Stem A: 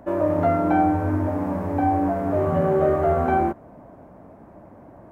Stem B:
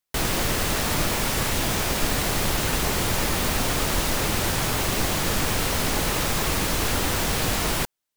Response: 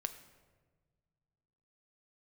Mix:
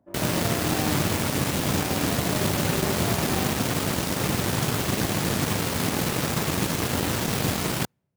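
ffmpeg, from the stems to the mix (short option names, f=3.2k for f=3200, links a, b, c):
-filter_complex "[0:a]asoftclip=type=tanh:threshold=-17dB,volume=-15.5dB[a];[1:a]highpass=95,volume=-5.5dB,asplit=2[b][c];[c]volume=-24dB[d];[2:a]atrim=start_sample=2205[e];[d][e]afir=irnorm=-1:irlink=0[f];[a][b][f]amix=inputs=3:normalize=0,highpass=55,equalizer=f=140:w=0.4:g=9,aeval=exprs='0.224*(cos(1*acos(clip(val(0)/0.224,-1,1)))-cos(1*PI/2))+0.0562*(cos(5*acos(clip(val(0)/0.224,-1,1)))-cos(5*PI/2))+0.0631*(cos(7*acos(clip(val(0)/0.224,-1,1)))-cos(7*PI/2))':c=same"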